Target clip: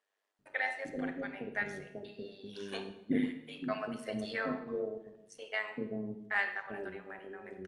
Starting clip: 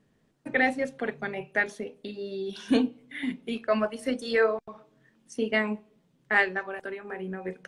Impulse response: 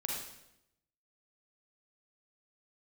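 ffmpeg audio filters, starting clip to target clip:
-filter_complex "[0:a]tremolo=f=100:d=0.621,acrossover=split=550[link_01][link_02];[link_01]adelay=390[link_03];[link_03][link_02]amix=inputs=2:normalize=0,asplit=2[link_04][link_05];[1:a]atrim=start_sample=2205,asetrate=48510,aresample=44100,highshelf=frequency=6100:gain=-8[link_06];[link_05][link_06]afir=irnorm=-1:irlink=0,volume=-3.5dB[link_07];[link_04][link_07]amix=inputs=2:normalize=0,volume=-9dB"

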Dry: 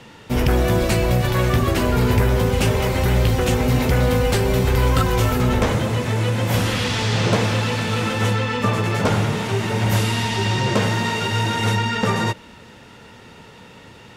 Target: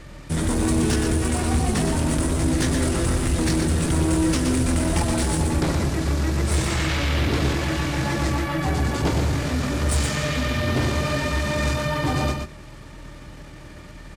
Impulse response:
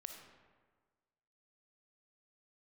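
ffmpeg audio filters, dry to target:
-filter_complex "[0:a]highpass=100,aemphasis=mode=production:type=75fm,acrossover=split=790[link_01][link_02];[link_01]acontrast=36[link_03];[link_03][link_02]amix=inputs=2:normalize=0,highshelf=frequency=3800:gain=-5,acrusher=bits=5:mode=log:mix=0:aa=0.000001,aeval=exprs='val(0)+0.0126*(sin(2*PI*60*n/s)+sin(2*PI*2*60*n/s)/2+sin(2*PI*3*60*n/s)/3+sin(2*PI*4*60*n/s)/4+sin(2*PI*5*60*n/s)/5)':channel_layout=same,asetrate=28595,aresample=44100,atempo=1.54221,asoftclip=type=tanh:threshold=-13dB,aecho=1:1:122:0.531,volume=-3.5dB"

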